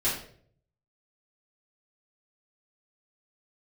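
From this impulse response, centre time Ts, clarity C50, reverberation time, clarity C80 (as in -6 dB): 39 ms, 4.0 dB, 0.55 s, 8.5 dB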